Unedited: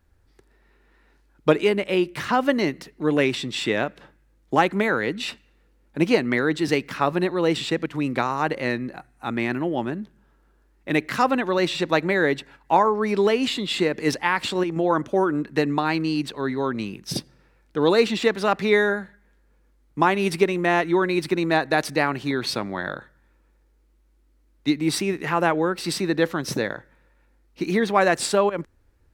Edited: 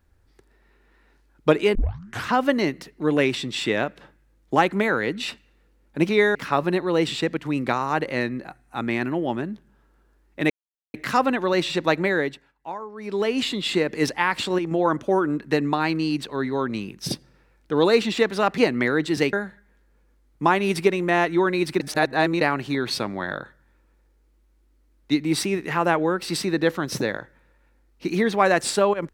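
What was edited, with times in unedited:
0:01.75: tape start 0.54 s
0:06.09–0:06.84: swap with 0:18.63–0:18.89
0:10.99: splice in silence 0.44 s
0:12.10–0:13.48: duck −15.5 dB, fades 0.46 s
0:21.36–0:21.97: reverse

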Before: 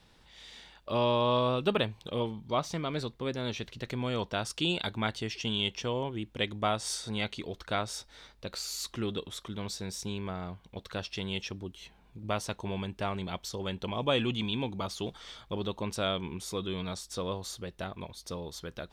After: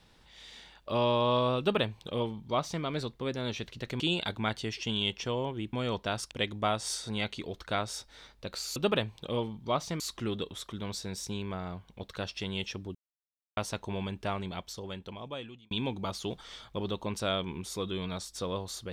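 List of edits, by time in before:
0:01.59–0:02.83: duplicate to 0:08.76
0:04.00–0:04.58: move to 0:06.31
0:11.71–0:12.33: silence
0:13.03–0:14.47: fade out

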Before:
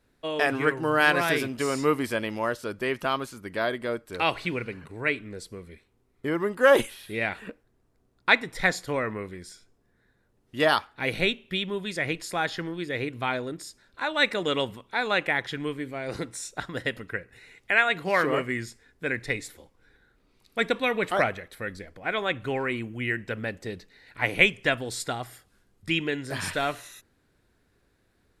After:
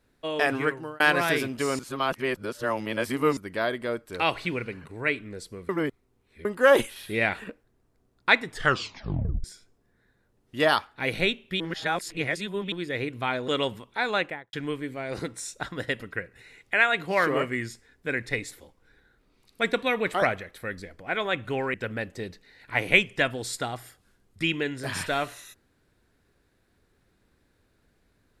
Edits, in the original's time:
0:00.57–0:01.00: fade out
0:01.79–0:03.37: reverse
0:05.69–0:06.45: reverse
0:06.96–0:07.44: clip gain +3.5 dB
0:08.48: tape stop 0.96 s
0:11.60–0:12.72: reverse
0:13.48–0:14.45: remove
0:15.09–0:15.50: fade out and dull
0:22.71–0:23.21: remove

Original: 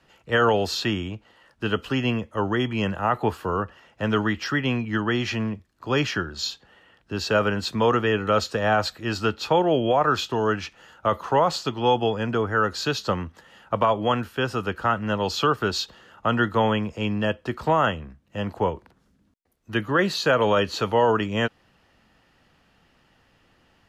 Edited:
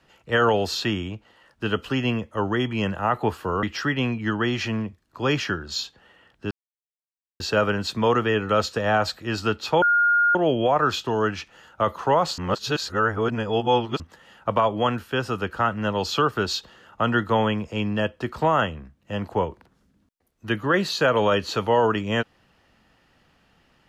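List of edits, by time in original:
0:03.63–0:04.30: remove
0:07.18: splice in silence 0.89 s
0:09.60: insert tone 1,420 Hz −15.5 dBFS 0.53 s
0:11.63–0:13.25: reverse

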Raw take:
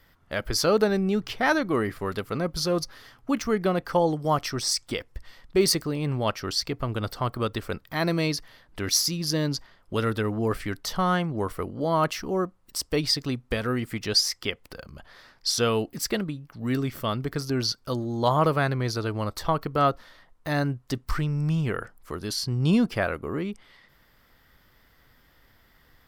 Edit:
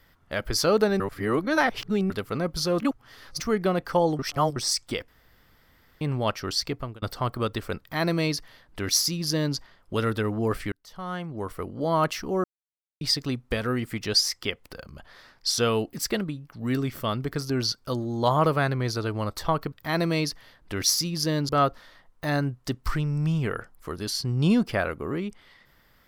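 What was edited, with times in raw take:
0:01.00–0:02.10: reverse
0:02.80–0:03.40: reverse
0:04.19–0:04.56: reverse
0:05.08–0:06.01: fill with room tone
0:06.72–0:07.02: fade out
0:07.79–0:09.56: duplicate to 0:19.72
0:10.72–0:11.89: fade in
0:12.44–0:13.01: silence

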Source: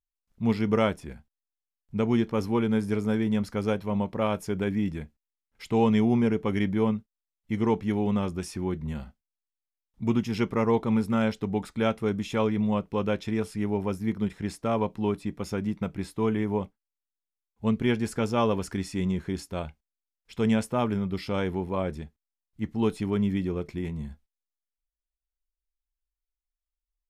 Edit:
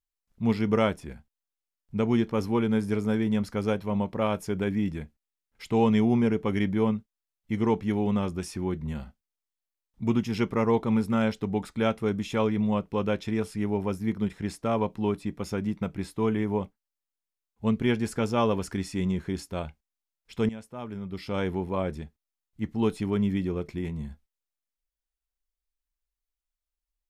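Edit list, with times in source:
0:20.49–0:21.44: fade in quadratic, from −16 dB

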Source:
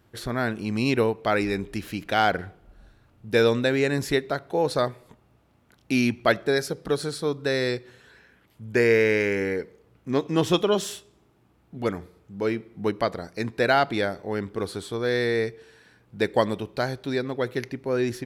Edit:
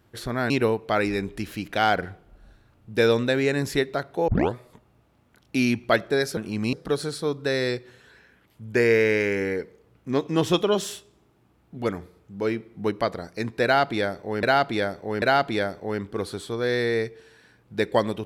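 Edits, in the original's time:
0:00.50–0:00.86: move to 0:06.73
0:04.64: tape start 0.26 s
0:13.64–0:14.43: repeat, 3 plays

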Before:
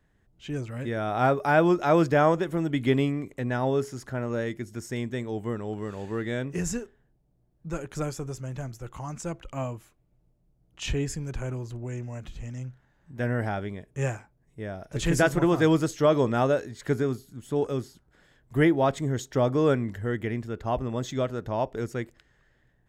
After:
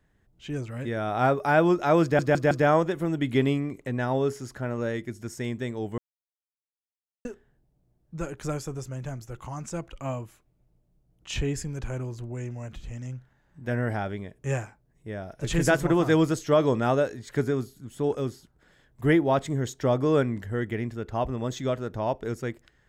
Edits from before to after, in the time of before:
0:02.03: stutter 0.16 s, 4 plays
0:05.50–0:06.77: silence

